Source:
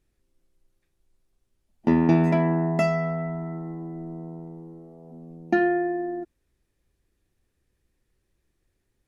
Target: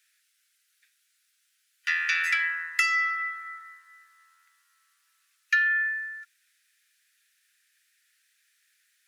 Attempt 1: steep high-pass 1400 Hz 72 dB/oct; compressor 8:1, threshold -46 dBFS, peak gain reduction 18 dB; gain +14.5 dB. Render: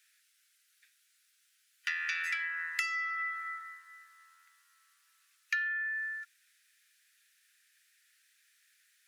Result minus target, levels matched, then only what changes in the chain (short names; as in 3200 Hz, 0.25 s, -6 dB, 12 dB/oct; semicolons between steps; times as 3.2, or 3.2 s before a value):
compressor: peak gain reduction +10 dB
change: compressor 8:1, threshold -34.5 dBFS, peak gain reduction 8 dB